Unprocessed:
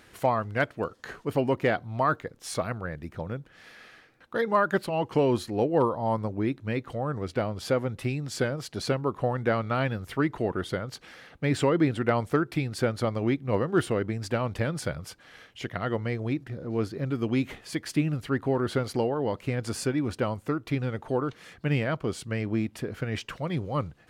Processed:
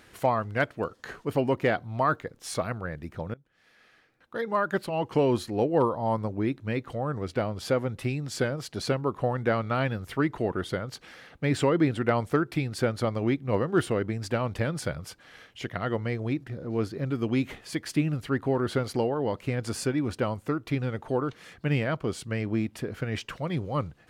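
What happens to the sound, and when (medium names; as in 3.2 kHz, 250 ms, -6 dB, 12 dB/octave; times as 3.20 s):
3.34–5.20 s: fade in, from -21 dB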